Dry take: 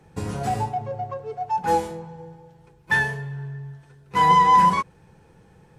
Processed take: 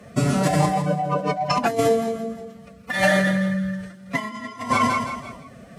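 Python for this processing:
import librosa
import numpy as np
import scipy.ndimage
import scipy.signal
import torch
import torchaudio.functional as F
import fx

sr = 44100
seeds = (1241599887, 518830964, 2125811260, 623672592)

p1 = x + fx.echo_feedback(x, sr, ms=167, feedback_pct=42, wet_db=-11, dry=0)
p2 = fx.over_compress(p1, sr, threshold_db=-24.0, ratio=-0.5)
p3 = fx.peak_eq(p2, sr, hz=690.0, db=-9.0, octaves=0.26)
p4 = fx.pitch_keep_formants(p3, sr, semitones=5.5)
p5 = fx.highpass(p4, sr, hz=110.0, slope=6)
y = p5 * 10.0 ** (6.5 / 20.0)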